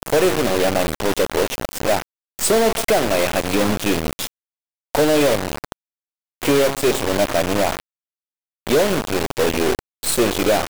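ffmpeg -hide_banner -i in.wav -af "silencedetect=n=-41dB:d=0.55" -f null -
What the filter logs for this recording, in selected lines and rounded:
silence_start: 4.27
silence_end: 4.94 | silence_duration: 0.67
silence_start: 5.72
silence_end: 6.42 | silence_duration: 0.70
silence_start: 7.80
silence_end: 8.67 | silence_duration: 0.87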